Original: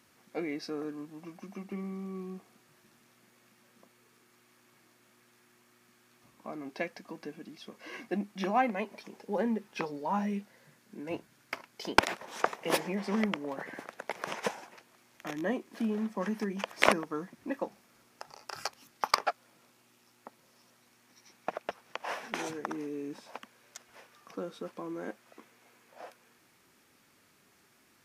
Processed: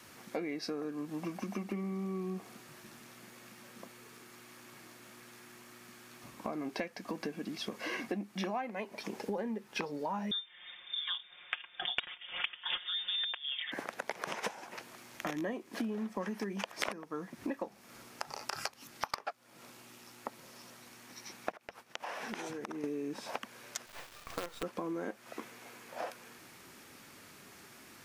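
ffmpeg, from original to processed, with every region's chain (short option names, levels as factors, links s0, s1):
-filter_complex "[0:a]asettb=1/sr,asplit=3[s0][s1][s2];[s0]atrim=end=10.314[s3];[s1]atrim=start=10.31:end=13.72,asetpts=PTS-STARTPTS,afade=t=in:d=0.004:c=qsin,afade=t=out:st=3.406:d=0.004:c=qsin,lowpass=f=3200:t=q:w=0.5098,lowpass=f=3200:t=q:w=0.6013,lowpass=f=3200:t=q:w=0.9,lowpass=f=3200:t=q:w=2.563,afreqshift=-3800,aecho=1:1:5.6:0.9,atrim=end_sample=150381[s4];[s2]atrim=start=13.716[s5];[s3][s4]acrossfade=d=0.004:c1=hsin:c2=qsin[s6];[s6][s5]acrossfade=d=0.004:c1=qsin:c2=hsin,asettb=1/sr,asplit=3[s7][s8][s9];[s7]atrim=end=21.524[s10];[s8]atrim=start=21.52:end=22.84,asetpts=PTS-STARTPTS,afade=t=in:d=0.004:c=qsin,afade=t=out:st=1.316:d=0.004:c=qsin,agate=range=0.0224:threshold=0.002:ratio=3:release=100:detection=peak,acompressor=threshold=0.00447:ratio=16:attack=3.2:release=140:knee=1:detection=peak[s11];[s9]atrim=start=22.836[s12];[s10][s11]acrossfade=d=0.004:c1=hsin:c2=qsin[s13];[s13][s12]acrossfade=d=0.004:c1=qsin:c2=hsin,asettb=1/sr,asplit=3[s14][s15][s16];[s14]atrim=end=23.864[s17];[s15]atrim=start=23.86:end=24.63,asetpts=PTS-STARTPTS,afade=t=in:d=0.004:c=qsin,afade=t=out:st=0.766:d=0.004:c=qsin,highpass=530,lowpass=5400,acrusher=bits=7:dc=4:mix=0:aa=0.000001[s18];[s16]atrim=start=24.626[s19];[s17][s18]acrossfade=d=0.004:c1=hsin:c2=qsin[s20];[s20][s19]acrossfade=d=0.004:c1=qsin:c2=hsin,adynamicequalizer=threshold=0.00562:dfrequency=230:dqfactor=2.4:tfrequency=230:tqfactor=2.4:attack=5:release=100:ratio=0.375:range=2:mode=cutabove:tftype=bell,acompressor=threshold=0.00562:ratio=8,volume=3.35"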